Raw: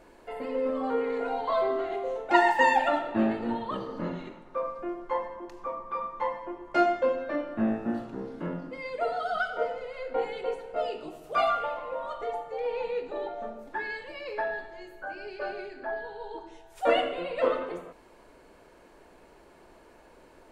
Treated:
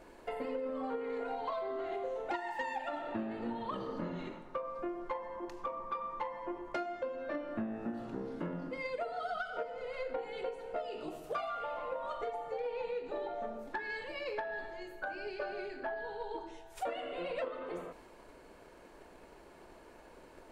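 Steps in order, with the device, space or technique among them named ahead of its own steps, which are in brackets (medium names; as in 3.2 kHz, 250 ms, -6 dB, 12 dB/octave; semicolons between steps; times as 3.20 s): drum-bus smash (transient shaper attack +6 dB, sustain +2 dB; compression 10:1, threshold -32 dBFS, peak gain reduction 22 dB; saturation -25 dBFS, distortion -22 dB); trim -1.5 dB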